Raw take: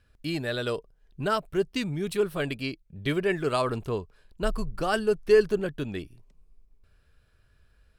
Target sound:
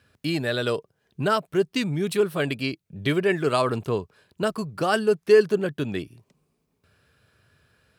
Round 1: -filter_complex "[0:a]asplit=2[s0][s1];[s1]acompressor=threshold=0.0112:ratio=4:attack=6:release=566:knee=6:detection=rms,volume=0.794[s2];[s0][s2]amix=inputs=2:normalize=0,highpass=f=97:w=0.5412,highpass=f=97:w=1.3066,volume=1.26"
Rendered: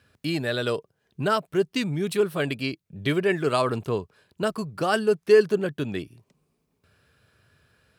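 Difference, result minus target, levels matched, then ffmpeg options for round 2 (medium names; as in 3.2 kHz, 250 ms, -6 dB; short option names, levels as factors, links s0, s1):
compression: peak gain reduction +5.5 dB
-filter_complex "[0:a]asplit=2[s0][s1];[s1]acompressor=threshold=0.0251:ratio=4:attack=6:release=566:knee=6:detection=rms,volume=0.794[s2];[s0][s2]amix=inputs=2:normalize=0,highpass=f=97:w=0.5412,highpass=f=97:w=1.3066,volume=1.26"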